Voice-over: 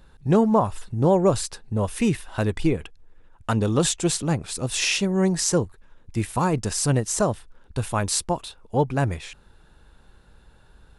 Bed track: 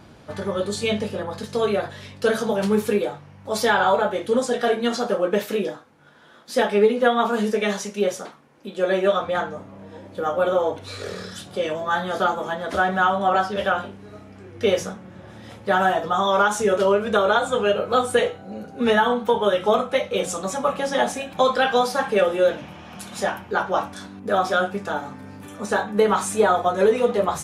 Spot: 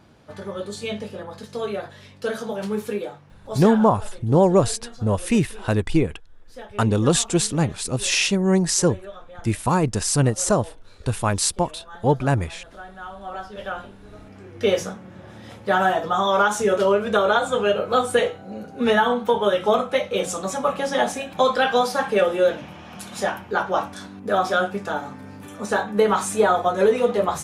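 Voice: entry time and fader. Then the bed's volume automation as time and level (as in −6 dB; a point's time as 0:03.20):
3.30 s, +2.5 dB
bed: 0:03.53 −6 dB
0:03.93 −19.5 dB
0:12.93 −19.5 dB
0:14.34 0 dB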